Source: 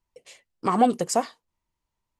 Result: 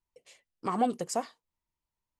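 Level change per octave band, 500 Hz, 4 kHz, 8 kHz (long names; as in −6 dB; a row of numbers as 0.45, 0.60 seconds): −8.0, −8.0, −8.0 decibels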